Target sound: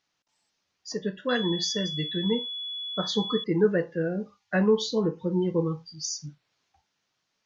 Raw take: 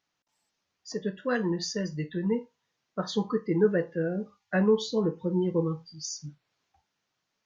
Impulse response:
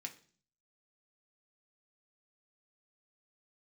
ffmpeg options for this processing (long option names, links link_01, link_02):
-filter_complex "[0:a]lowpass=6300,highshelf=frequency=3800:gain=7.5,asettb=1/sr,asplit=3[link_01][link_02][link_03];[link_01]atrim=end=1.294[link_04];[link_02]atrim=start=1.29:end=3.44,asetpts=PTS-STARTPTS,afade=type=in:duration=0.004:curve=qsin,afade=type=out:start_time=2.146:duration=0.004:curve=qsin,aeval=exprs='val(0)+0.0224*sin(2*PI*3400*n/s)':channel_layout=same[link_05];[link_03]atrim=start=3.436[link_06];[link_04][link_05]acrossfade=duration=0.004:curve1=hsin:curve2=qsin[link_07];[link_07][link_06]acrossfade=duration=0.004:curve1=qsin:curve2=hsin,volume=1dB"